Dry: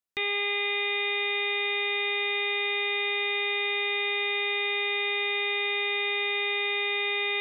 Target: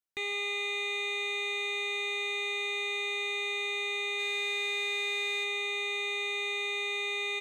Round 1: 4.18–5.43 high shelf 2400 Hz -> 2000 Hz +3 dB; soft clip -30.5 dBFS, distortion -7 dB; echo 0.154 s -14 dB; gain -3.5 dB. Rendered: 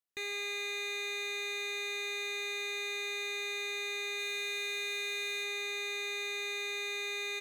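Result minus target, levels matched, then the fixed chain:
soft clip: distortion +9 dB
4.18–5.43 high shelf 2400 Hz -> 2000 Hz +3 dB; soft clip -22 dBFS, distortion -16 dB; echo 0.154 s -14 dB; gain -3.5 dB

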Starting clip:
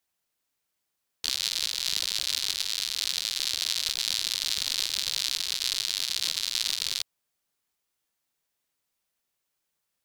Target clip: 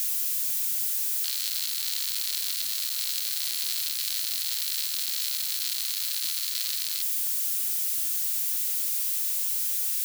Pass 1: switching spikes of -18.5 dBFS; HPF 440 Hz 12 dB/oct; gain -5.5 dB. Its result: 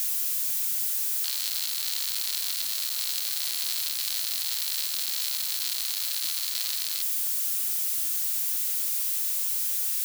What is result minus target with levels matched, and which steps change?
500 Hz band +13.0 dB
change: HPF 1300 Hz 12 dB/oct

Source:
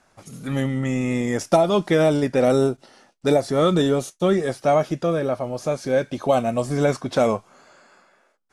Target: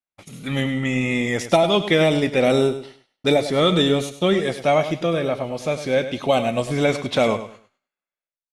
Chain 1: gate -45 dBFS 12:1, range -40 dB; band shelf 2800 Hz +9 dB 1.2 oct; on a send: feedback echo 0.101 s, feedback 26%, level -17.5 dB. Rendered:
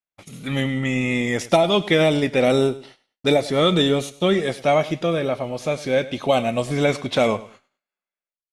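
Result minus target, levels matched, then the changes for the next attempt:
echo-to-direct -6 dB
change: feedback echo 0.101 s, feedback 26%, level -11.5 dB

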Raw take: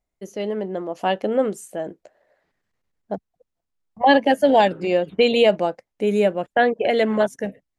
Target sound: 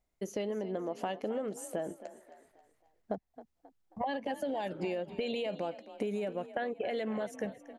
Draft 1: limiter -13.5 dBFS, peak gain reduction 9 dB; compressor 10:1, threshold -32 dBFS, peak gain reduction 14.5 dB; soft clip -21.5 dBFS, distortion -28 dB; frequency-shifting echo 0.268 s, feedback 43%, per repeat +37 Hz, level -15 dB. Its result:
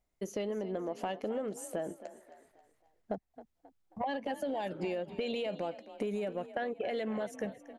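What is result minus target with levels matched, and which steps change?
soft clip: distortion +22 dB
change: soft clip -10 dBFS, distortion -50 dB

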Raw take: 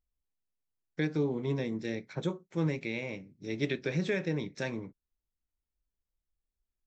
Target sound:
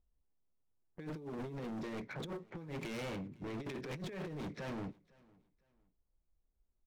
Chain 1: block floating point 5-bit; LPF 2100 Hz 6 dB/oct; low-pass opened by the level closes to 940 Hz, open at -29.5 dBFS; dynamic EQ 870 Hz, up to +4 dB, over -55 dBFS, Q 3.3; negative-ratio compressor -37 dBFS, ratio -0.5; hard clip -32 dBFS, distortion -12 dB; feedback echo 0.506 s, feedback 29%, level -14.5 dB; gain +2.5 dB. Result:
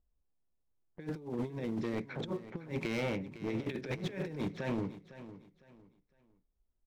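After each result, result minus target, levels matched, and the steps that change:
echo-to-direct +11 dB; hard clip: distortion -8 dB
change: feedback echo 0.506 s, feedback 29%, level -25.5 dB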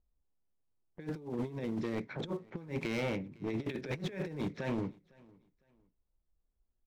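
hard clip: distortion -8 dB
change: hard clip -42 dBFS, distortion -4 dB

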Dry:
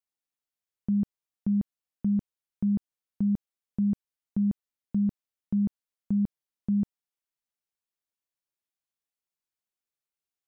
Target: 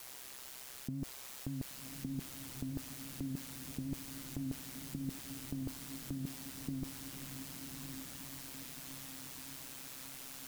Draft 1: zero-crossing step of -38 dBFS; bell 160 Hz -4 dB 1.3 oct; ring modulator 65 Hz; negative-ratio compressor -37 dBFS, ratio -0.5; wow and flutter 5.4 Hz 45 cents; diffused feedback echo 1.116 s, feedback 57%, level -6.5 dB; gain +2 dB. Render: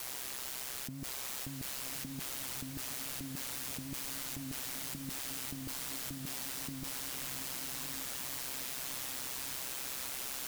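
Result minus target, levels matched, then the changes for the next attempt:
zero-crossing step: distortion +11 dB
change: zero-crossing step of -49.5 dBFS

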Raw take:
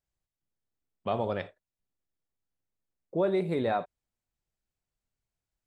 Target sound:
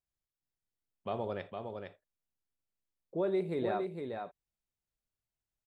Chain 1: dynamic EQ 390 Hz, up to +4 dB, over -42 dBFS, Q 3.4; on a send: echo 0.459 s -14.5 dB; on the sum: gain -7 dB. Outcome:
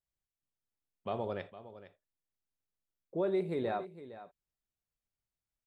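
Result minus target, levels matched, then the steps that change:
echo-to-direct -9 dB
change: echo 0.459 s -5.5 dB

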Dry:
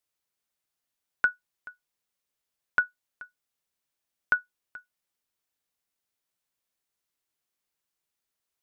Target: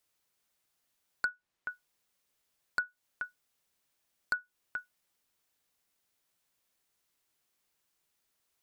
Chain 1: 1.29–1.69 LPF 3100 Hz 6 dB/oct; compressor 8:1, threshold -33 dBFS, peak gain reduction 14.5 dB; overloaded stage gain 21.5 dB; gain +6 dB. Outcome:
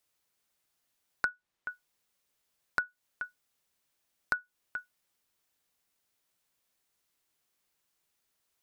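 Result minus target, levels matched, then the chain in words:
overloaded stage: distortion -6 dB
1.29–1.69 LPF 3100 Hz 6 dB/oct; compressor 8:1, threshold -33 dBFS, peak gain reduction 14.5 dB; overloaded stage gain 28 dB; gain +6 dB

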